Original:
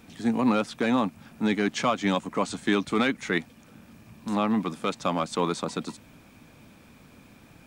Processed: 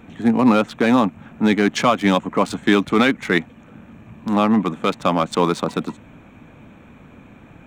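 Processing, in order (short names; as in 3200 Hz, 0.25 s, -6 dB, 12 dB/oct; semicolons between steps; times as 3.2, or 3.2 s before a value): Wiener smoothing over 9 samples; gain +8.5 dB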